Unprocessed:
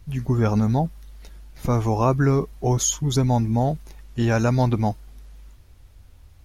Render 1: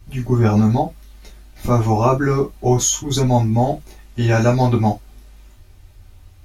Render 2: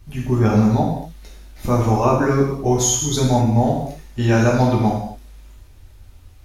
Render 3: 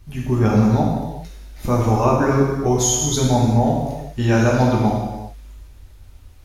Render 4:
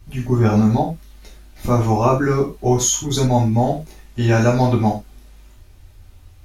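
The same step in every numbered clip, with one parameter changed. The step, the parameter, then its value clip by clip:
reverb whose tail is shaped and stops, gate: 80, 280, 440, 130 milliseconds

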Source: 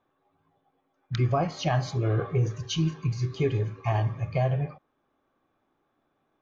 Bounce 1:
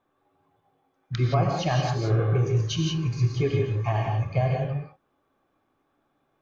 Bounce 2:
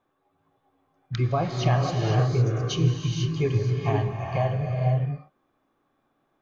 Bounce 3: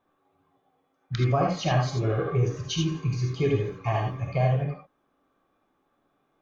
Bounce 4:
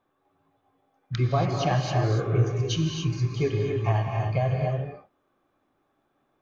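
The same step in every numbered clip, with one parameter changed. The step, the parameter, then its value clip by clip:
reverb whose tail is shaped and stops, gate: 200, 530, 100, 310 milliseconds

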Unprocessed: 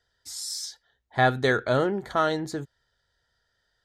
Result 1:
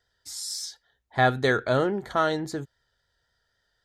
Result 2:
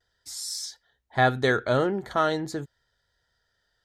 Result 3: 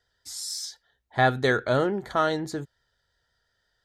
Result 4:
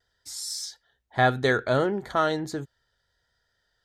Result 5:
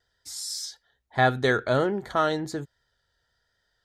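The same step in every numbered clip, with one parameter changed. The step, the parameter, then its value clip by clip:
pitch vibrato, speed: 3.7, 0.42, 5.8, 0.68, 1.2 Hertz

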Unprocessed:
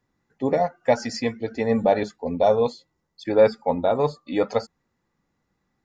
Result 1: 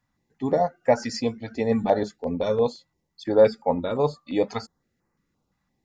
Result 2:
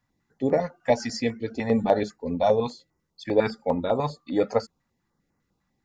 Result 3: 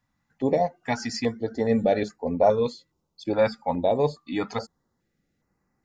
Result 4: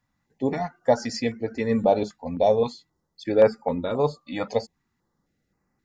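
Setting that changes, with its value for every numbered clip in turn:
notch on a step sequencer, speed: 5.8, 10, 2.4, 3.8 Hertz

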